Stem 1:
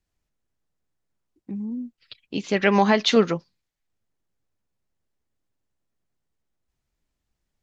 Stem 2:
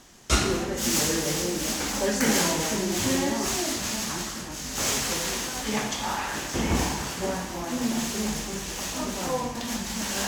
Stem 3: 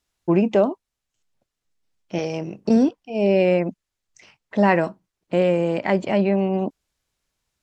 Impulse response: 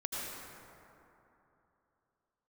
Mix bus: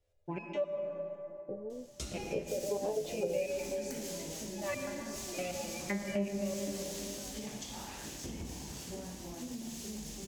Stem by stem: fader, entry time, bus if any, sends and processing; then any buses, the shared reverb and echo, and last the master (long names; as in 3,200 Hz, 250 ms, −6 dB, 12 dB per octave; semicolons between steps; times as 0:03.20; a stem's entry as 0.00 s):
+1.5 dB, 0.00 s, no send, drawn EQ curve 130 Hz 0 dB, 230 Hz −24 dB, 550 Hz +15 dB, 1,300 Hz −27 dB; compressor whose output falls as the input rises −25 dBFS, ratio −1; tuned comb filter 86 Hz, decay 0.24 s, harmonics all, mix 80%
−8.0 dB, 1.70 s, no send, parametric band 1,300 Hz −12.5 dB 1.9 octaves; downward compressor 6 to 1, threshold −31 dBFS, peak gain reduction 12.5 dB
−4.5 dB, 0.00 s, send −4 dB, parametric band 2,400 Hz +6 dB 0.61 octaves; step-sequenced resonator 7.8 Hz 100–1,200 Hz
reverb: on, RT60 3.0 s, pre-delay 73 ms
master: downward compressor 2.5 to 1, threshold −34 dBFS, peak gain reduction 10.5 dB